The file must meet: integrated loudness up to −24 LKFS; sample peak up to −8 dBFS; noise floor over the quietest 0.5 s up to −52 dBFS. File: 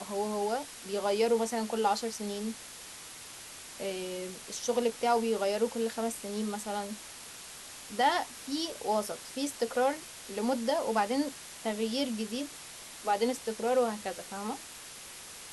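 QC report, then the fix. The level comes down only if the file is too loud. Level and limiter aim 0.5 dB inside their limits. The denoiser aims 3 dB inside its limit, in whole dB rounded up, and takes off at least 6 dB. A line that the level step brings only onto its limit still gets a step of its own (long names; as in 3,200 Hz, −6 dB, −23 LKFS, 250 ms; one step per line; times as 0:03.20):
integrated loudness −32.0 LKFS: in spec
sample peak −15.0 dBFS: in spec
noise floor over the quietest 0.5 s −47 dBFS: out of spec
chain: broadband denoise 8 dB, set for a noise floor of −47 dBFS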